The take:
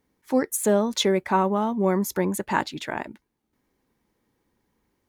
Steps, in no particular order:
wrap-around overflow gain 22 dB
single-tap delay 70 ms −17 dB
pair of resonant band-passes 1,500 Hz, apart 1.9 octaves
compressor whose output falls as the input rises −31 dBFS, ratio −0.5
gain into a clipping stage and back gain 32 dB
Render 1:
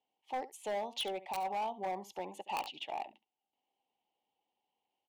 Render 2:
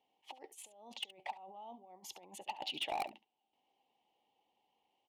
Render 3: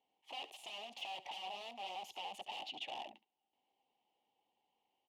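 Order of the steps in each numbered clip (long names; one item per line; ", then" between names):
pair of resonant band-passes, then wrap-around overflow, then single-tap delay, then compressor whose output falls as the input rises, then gain into a clipping stage and back
compressor whose output falls as the input rises, then pair of resonant band-passes, then wrap-around overflow, then gain into a clipping stage and back, then single-tap delay
wrap-around overflow, then compressor whose output falls as the input rises, then single-tap delay, then gain into a clipping stage and back, then pair of resonant band-passes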